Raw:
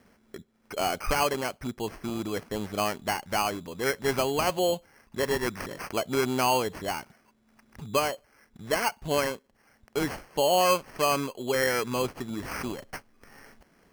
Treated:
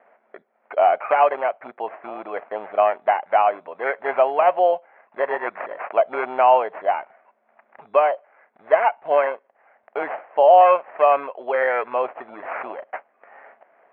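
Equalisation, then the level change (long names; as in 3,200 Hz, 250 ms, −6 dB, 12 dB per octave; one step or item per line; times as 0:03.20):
high-pass with resonance 660 Hz, resonance Q 3.7
Butterworth low-pass 2,400 Hz 36 dB per octave
+3.5 dB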